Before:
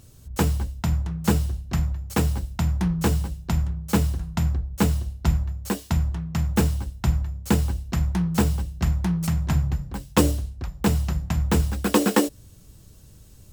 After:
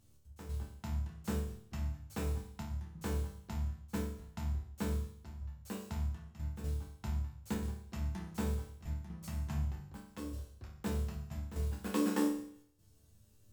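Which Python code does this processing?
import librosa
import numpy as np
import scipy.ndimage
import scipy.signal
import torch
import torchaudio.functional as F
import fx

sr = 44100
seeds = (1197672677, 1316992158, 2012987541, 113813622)

y = fx.step_gate(x, sr, bpm=183, pattern='xx.x..xxxxxxxxx', floor_db=-12.0, edge_ms=4.5)
y = fx.resonator_bank(y, sr, root=38, chord='sus4', decay_s=0.65)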